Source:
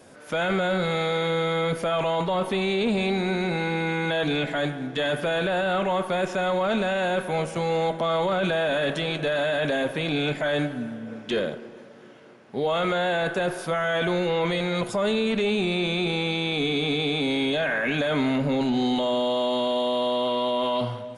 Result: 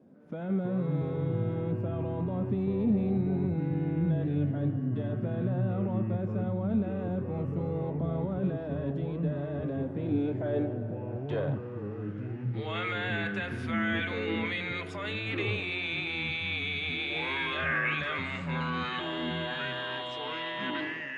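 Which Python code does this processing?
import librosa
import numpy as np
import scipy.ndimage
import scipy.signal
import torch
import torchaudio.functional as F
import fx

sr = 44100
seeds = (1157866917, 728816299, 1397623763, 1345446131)

y = fx.filter_sweep_bandpass(x, sr, from_hz=210.0, to_hz=2100.0, start_s=9.85, end_s=12.56, q=2.0)
y = fx.echo_pitch(y, sr, ms=220, semitones=-5, count=2, db_per_echo=-3.0)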